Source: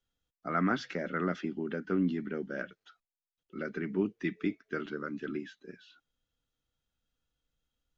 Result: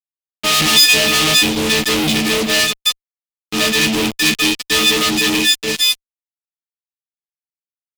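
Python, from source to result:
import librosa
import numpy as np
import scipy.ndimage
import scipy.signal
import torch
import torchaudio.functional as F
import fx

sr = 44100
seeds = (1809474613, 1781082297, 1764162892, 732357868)

y = fx.freq_snap(x, sr, grid_st=6)
y = fx.fuzz(y, sr, gain_db=52.0, gate_db=-50.0)
y = fx.high_shelf_res(y, sr, hz=2100.0, db=9.0, q=1.5)
y = y * 10.0 ** (-3.5 / 20.0)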